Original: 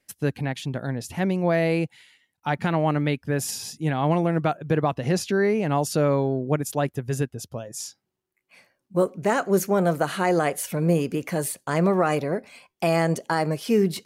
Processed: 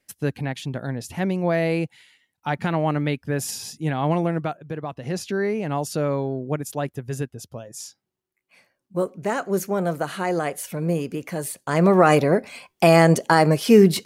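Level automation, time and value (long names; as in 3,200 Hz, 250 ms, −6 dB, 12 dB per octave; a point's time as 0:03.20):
0:04.27 0 dB
0:04.77 −9.5 dB
0:05.28 −2.5 dB
0:11.43 −2.5 dB
0:12.09 +7.5 dB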